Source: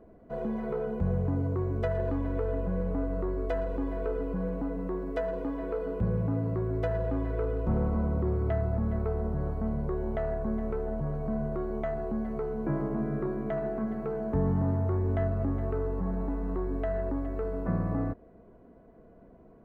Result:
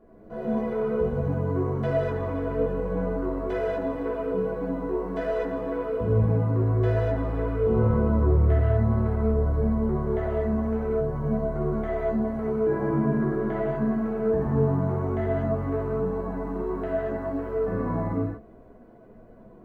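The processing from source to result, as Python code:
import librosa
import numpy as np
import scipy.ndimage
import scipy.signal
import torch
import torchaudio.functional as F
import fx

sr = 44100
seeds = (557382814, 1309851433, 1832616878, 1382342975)

y = fx.rev_gated(x, sr, seeds[0], gate_ms=270, shape='flat', drr_db=-8.0)
y = fx.chorus_voices(y, sr, voices=4, hz=0.46, base_ms=12, depth_ms=4.2, mix_pct=35)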